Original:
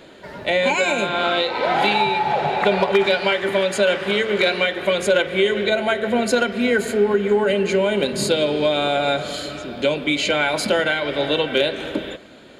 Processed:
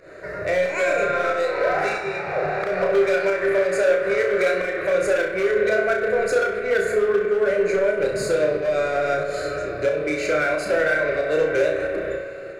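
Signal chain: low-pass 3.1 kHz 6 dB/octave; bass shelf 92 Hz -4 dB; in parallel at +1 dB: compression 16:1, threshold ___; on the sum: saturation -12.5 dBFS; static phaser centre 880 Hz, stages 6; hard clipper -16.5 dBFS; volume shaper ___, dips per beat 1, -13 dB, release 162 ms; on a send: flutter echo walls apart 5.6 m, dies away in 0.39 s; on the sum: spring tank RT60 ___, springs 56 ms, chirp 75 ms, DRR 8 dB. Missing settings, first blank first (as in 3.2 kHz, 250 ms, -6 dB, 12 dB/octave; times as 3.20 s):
-31 dBFS, 91 bpm, 3.4 s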